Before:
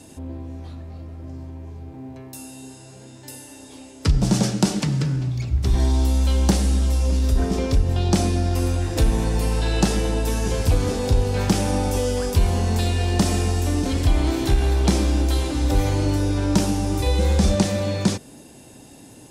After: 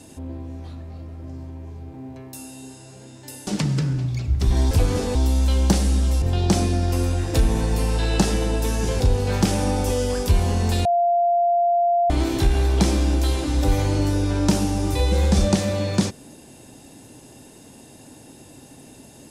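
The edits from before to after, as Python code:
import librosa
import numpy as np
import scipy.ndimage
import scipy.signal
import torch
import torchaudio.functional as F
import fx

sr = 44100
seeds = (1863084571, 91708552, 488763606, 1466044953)

y = fx.edit(x, sr, fx.cut(start_s=3.47, length_s=1.23),
    fx.cut(start_s=7.01, length_s=0.84),
    fx.move(start_s=10.63, length_s=0.44, to_s=5.94),
    fx.bleep(start_s=12.92, length_s=1.25, hz=694.0, db=-15.5), tone=tone)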